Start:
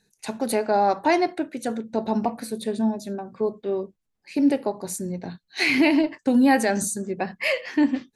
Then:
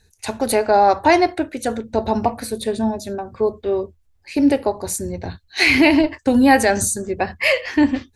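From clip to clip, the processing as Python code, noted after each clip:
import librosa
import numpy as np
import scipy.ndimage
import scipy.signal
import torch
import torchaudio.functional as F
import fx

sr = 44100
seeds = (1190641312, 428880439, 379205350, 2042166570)

y = fx.low_shelf_res(x, sr, hz=120.0, db=12.5, q=3.0)
y = F.gain(torch.from_numpy(y), 7.0).numpy()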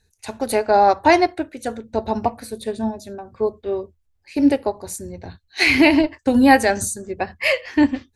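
y = fx.upward_expand(x, sr, threshold_db=-25.0, expansion=1.5)
y = F.gain(torch.from_numpy(y), 1.0).numpy()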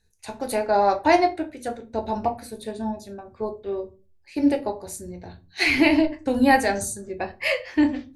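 y = fx.room_shoebox(x, sr, seeds[0], volume_m3=120.0, walls='furnished', distance_m=0.75)
y = F.gain(torch.from_numpy(y), -5.5).numpy()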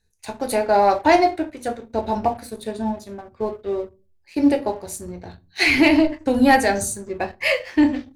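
y = fx.leveller(x, sr, passes=1)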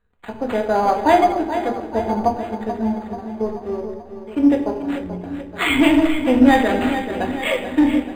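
y = fx.echo_feedback(x, sr, ms=435, feedback_pct=56, wet_db=-10.0)
y = fx.room_shoebox(y, sr, seeds[1], volume_m3=3200.0, walls='furnished', distance_m=1.8)
y = np.interp(np.arange(len(y)), np.arange(len(y))[::8], y[::8])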